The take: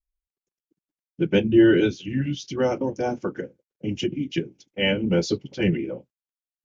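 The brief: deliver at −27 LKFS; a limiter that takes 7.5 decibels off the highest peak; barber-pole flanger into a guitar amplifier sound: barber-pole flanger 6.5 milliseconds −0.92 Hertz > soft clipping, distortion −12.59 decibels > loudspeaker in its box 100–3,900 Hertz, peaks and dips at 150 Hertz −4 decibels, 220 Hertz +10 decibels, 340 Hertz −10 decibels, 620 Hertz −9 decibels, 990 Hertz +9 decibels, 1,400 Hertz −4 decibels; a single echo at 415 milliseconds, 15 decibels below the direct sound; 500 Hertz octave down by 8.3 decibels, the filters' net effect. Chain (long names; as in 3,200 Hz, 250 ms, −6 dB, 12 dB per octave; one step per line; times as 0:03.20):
parametric band 500 Hz −4 dB
brickwall limiter −15.5 dBFS
single-tap delay 415 ms −15 dB
barber-pole flanger 6.5 ms −0.92 Hz
soft clipping −25.5 dBFS
loudspeaker in its box 100–3,900 Hz, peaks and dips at 150 Hz −4 dB, 220 Hz +10 dB, 340 Hz −10 dB, 620 Hz −9 dB, 990 Hz +9 dB, 1,400 Hz −4 dB
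level +7 dB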